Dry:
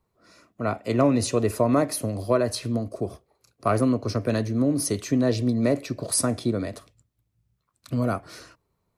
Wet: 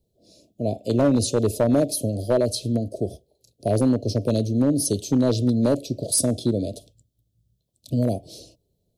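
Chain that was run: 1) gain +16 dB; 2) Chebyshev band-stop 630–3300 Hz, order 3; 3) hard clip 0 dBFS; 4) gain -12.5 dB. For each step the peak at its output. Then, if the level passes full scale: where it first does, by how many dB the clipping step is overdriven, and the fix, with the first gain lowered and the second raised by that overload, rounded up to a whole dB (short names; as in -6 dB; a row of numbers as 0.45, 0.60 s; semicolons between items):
+8.5, +6.5, 0.0, -12.5 dBFS; step 1, 6.5 dB; step 1 +9 dB, step 4 -5.5 dB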